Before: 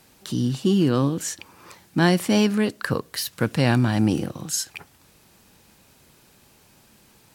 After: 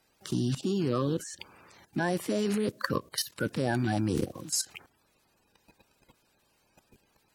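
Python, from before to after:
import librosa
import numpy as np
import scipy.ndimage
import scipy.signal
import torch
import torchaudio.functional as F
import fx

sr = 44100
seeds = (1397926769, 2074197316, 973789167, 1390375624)

y = fx.spec_quant(x, sr, step_db=30)
y = fx.level_steps(y, sr, step_db=14)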